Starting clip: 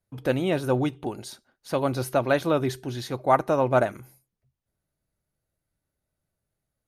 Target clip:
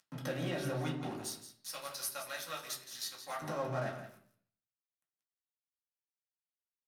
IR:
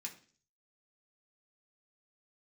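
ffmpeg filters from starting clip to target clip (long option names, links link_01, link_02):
-filter_complex "[0:a]highpass=120,bandreject=frequency=50:width_type=h:width=6,bandreject=frequency=100:width_type=h:width=6,bandreject=frequency=150:width_type=h:width=6,bandreject=frequency=200:width_type=h:width=6,bandreject=frequency=250:width_type=h:width=6,bandreject=frequency=300:width_type=h:width=6,asettb=1/sr,asplit=3[link_01][link_02][link_03];[link_01]atrim=end=1.234[link_04];[link_02]atrim=start=1.23:end=3.42,asetpts=PTS-STARTPTS,afade=type=in:duration=0.004:curve=qsin,afade=type=out:start_time=2.186:duration=0.004:curve=qsin,aderivative[link_05];[link_03]atrim=start=3.416[link_06];[link_04][link_05]acrossfade=duration=0.004:curve1=hsin:curve2=qsin[link_07];[link_07][link_06]acrossfade=duration=0.004:curve1=qsin:curve2=hsin,acompressor=threshold=-38dB:ratio=2,alimiter=level_in=5dB:limit=-24dB:level=0:latency=1:release=48,volume=-5dB,acompressor=mode=upward:threshold=-43dB:ratio=2.5,flanger=delay=9.9:depth=5.6:regen=43:speed=0.95:shape=triangular,aeval=exprs='sgn(val(0))*max(abs(val(0))-0.00188,0)':channel_layout=same,aecho=1:1:169:0.266[link_08];[1:a]atrim=start_sample=2205,asetrate=33075,aresample=44100[link_09];[link_08][link_09]afir=irnorm=-1:irlink=0,volume=10dB"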